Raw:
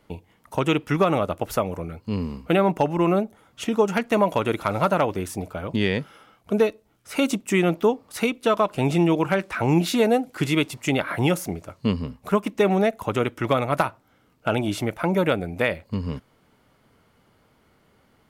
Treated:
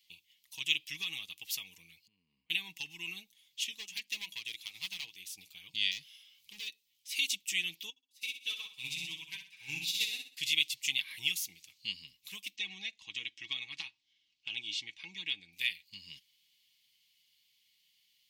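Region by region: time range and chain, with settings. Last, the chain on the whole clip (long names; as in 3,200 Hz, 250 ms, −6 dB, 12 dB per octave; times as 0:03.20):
0:02.07–0:02.50: low-shelf EQ 120 Hz −9.5 dB + downward compressor 12 to 1, threshold −39 dBFS + low-pass filter 1,000 Hz
0:03.71–0:05.38: mains-hum notches 50/100/150/200/250/300 Hz + hard clipping −16 dBFS + expander for the loud parts, over −29 dBFS
0:05.91–0:06.69: gain into a clipping stage and back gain 24 dB + upward compression, threshold −45 dBFS
0:07.90–0:10.37: comb filter 7.1 ms, depth 61% + flutter between parallel walls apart 10.8 metres, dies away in 0.93 s + expander for the loud parts 2.5 to 1, over −32 dBFS
0:12.56–0:15.53: low-pass filter 7,000 Hz 24 dB per octave + high-shelf EQ 5,000 Hz −8.5 dB + comb filter 3.6 ms, depth 34%
whole clip: inverse Chebyshev high-pass filter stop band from 1,500 Hz, stop band 40 dB; parametric band 9,700 Hz −10.5 dB 1.2 octaves; comb filter 6.3 ms, depth 38%; level +5 dB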